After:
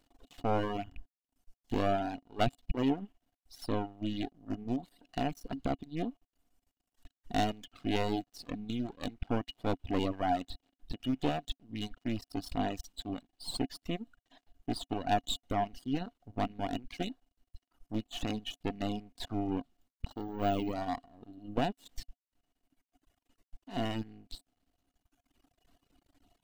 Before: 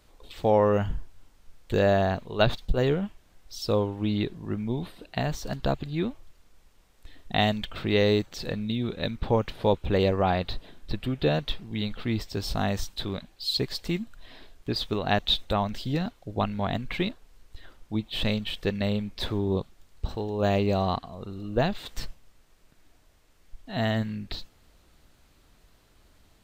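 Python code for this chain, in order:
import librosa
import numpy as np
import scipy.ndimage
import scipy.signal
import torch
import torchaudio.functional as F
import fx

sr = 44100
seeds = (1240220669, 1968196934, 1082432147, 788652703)

y = fx.rattle_buzz(x, sr, strikes_db=-26.0, level_db=-28.0)
y = np.maximum(y, 0.0)
y = fx.small_body(y, sr, hz=(270.0, 710.0, 2900.0), ring_ms=60, db=14)
y = fx.dereverb_blind(y, sr, rt60_s=1.9)
y = fx.resample_bad(y, sr, factor=2, down='none', up='hold', at=(20.11, 20.72))
y = F.gain(torch.from_numpy(y), -7.0).numpy()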